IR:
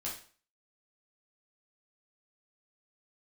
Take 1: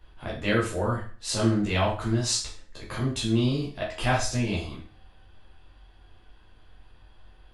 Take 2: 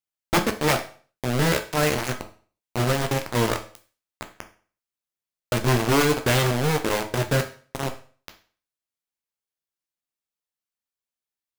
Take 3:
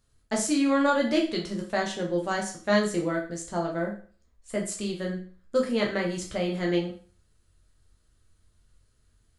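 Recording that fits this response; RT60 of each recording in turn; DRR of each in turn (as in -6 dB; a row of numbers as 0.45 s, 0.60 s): 1; 0.45 s, 0.45 s, 0.45 s; -6.0 dB, 5.5 dB, -1.0 dB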